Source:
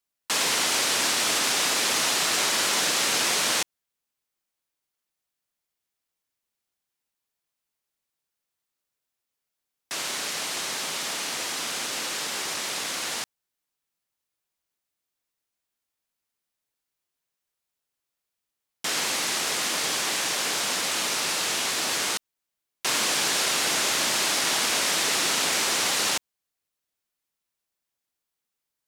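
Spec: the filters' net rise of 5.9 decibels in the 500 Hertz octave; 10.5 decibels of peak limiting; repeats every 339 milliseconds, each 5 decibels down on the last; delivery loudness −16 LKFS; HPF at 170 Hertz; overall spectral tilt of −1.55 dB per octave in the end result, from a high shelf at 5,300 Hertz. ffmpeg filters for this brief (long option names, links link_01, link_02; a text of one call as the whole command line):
ffmpeg -i in.wav -af "highpass=170,equalizer=frequency=500:width_type=o:gain=7.5,highshelf=frequency=5300:gain=-5,alimiter=limit=-21.5dB:level=0:latency=1,aecho=1:1:339|678|1017|1356|1695|2034|2373:0.562|0.315|0.176|0.0988|0.0553|0.031|0.0173,volume=12.5dB" out.wav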